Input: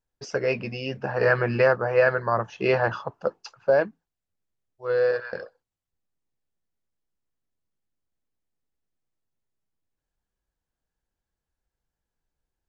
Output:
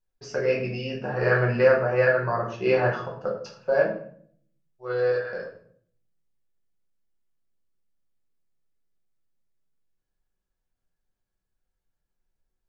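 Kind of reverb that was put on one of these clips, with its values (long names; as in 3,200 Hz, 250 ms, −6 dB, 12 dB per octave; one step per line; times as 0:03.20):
rectangular room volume 82 cubic metres, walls mixed, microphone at 1 metre
level −5.5 dB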